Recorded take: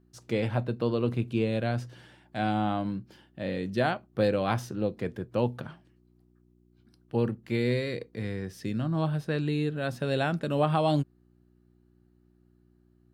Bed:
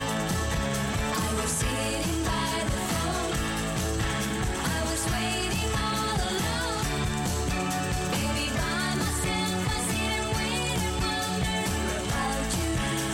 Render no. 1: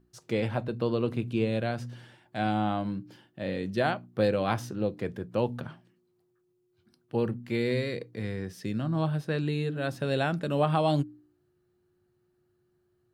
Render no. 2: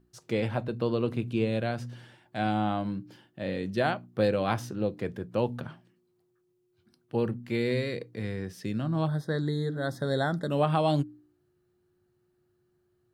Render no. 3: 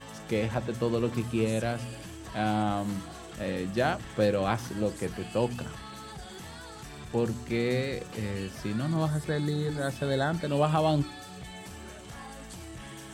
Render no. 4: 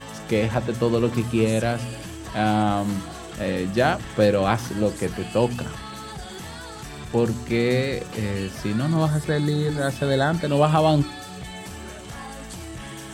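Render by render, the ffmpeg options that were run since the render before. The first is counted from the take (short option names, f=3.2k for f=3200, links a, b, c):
-af "bandreject=f=60:t=h:w=4,bandreject=f=120:t=h:w=4,bandreject=f=180:t=h:w=4,bandreject=f=240:t=h:w=4,bandreject=f=300:t=h:w=4"
-filter_complex "[0:a]asplit=3[a][b][c];[a]afade=t=out:st=9.07:d=0.02[d];[b]asuperstop=centerf=2600:order=20:qfactor=2.2,afade=t=in:st=9.07:d=0.02,afade=t=out:st=10.5:d=0.02[e];[c]afade=t=in:st=10.5:d=0.02[f];[d][e][f]amix=inputs=3:normalize=0"
-filter_complex "[1:a]volume=-15.5dB[a];[0:a][a]amix=inputs=2:normalize=0"
-af "volume=7dB"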